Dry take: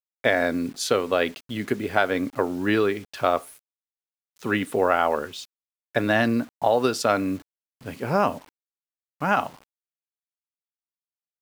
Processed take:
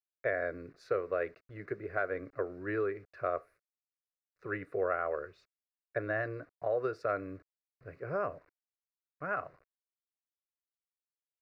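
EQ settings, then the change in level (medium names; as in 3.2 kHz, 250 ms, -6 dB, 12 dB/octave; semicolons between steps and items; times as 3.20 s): distance through air 360 m; static phaser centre 870 Hz, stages 6; -8.0 dB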